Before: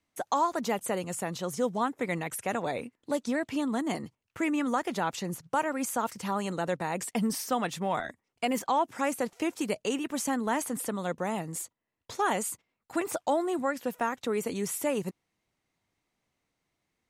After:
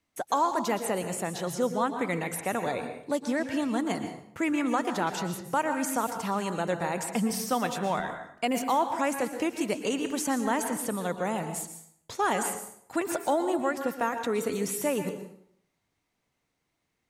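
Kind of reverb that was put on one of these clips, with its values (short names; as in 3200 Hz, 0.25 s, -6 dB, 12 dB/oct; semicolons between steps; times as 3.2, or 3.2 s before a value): plate-style reverb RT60 0.66 s, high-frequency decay 0.75×, pre-delay 0.105 s, DRR 7 dB; gain +1 dB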